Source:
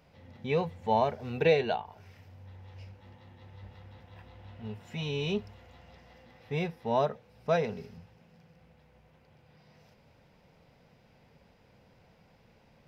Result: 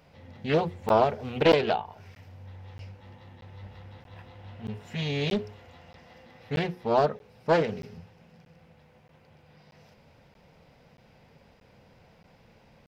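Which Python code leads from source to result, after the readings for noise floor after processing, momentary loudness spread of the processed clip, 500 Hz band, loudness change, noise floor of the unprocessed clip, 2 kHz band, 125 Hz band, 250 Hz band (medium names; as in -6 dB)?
-59 dBFS, 23 LU, +4.0 dB, +4.0 dB, -63 dBFS, +4.0 dB, +3.5 dB, +5.0 dB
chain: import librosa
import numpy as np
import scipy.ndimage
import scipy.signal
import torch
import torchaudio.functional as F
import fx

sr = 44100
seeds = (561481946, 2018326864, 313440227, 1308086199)

y = fx.hum_notches(x, sr, base_hz=60, count=7)
y = fx.buffer_crackle(y, sr, first_s=0.89, period_s=0.63, block=512, kind='zero')
y = fx.doppler_dist(y, sr, depth_ms=0.44)
y = y * librosa.db_to_amplitude(4.5)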